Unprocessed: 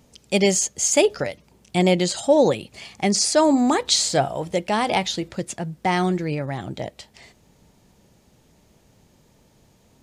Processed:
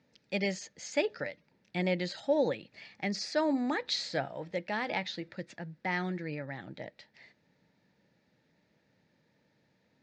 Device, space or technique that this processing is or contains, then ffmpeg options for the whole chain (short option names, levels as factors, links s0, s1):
kitchen radio: -af "highpass=180,equalizer=f=230:t=q:w=4:g=-4,equalizer=f=390:t=q:w=4:g=-8,equalizer=f=720:t=q:w=4:g=-7,equalizer=f=1100:t=q:w=4:g=-9,equalizer=f=1800:t=q:w=4:g=6,equalizer=f=3100:t=q:w=4:g=-8,lowpass=f=4400:w=0.5412,lowpass=f=4400:w=1.3066,volume=0.376"